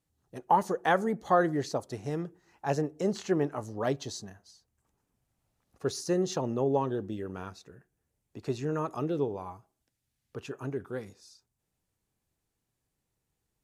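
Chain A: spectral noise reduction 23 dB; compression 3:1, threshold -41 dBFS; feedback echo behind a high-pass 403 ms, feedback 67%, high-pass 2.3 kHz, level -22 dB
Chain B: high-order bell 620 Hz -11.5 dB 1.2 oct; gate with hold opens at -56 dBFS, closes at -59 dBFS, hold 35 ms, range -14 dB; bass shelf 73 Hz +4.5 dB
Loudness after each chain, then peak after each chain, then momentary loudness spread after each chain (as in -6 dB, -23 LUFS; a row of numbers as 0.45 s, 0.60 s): -43.0 LUFS, -34.0 LUFS; -23.0 dBFS, -14.5 dBFS; 13 LU, 15 LU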